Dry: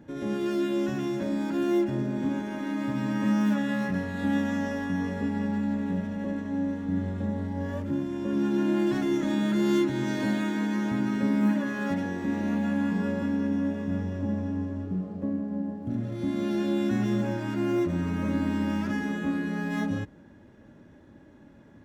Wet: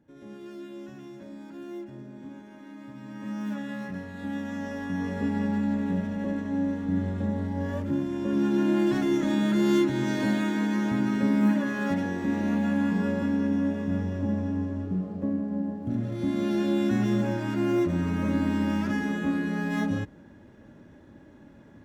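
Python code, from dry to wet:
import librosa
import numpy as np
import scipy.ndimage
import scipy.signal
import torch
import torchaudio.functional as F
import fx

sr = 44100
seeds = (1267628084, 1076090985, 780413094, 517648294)

y = fx.gain(x, sr, db=fx.line((3.0, -14.0), (3.55, -7.0), (4.37, -7.0), (5.28, 1.5)))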